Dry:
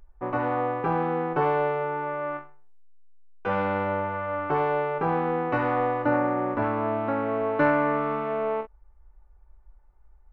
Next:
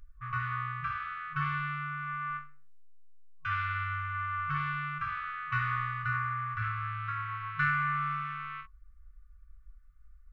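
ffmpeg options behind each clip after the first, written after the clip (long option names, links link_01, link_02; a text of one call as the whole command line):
ffmpeg -i in.wav -af "afftfilt=real='re*(1-between(b*sr/4096,160,1100))':imag='im*(1-between(b*sr/4096,160,1100))':win_size=4096:overlap=0.75" out.wav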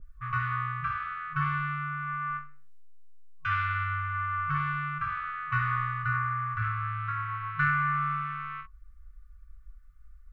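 ffmpeg -i in.wav -af "adynamicequalizer=threshold=0.00447:dfrequency=2000:dqfactor=0.7:tfrequency=2000:tqfactor=0.7:attack=5:release=100:ratio=0.375:range=3.5:mode=cutabove:tftype=highshelf,volume=4dB" out.wav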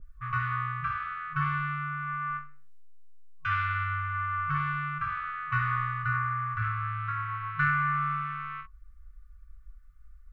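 ffmpeg -i in.wav -af anull out.wav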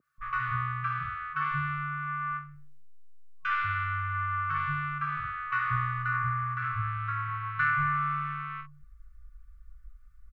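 ffmpeg -i in.wav -filter_complex "[0:a]acrossover=split=200[link_01][link_02];[link_01]adelay=180[link_03];[link_03][link_02]amix=inputs=2:normalize=0" out.wav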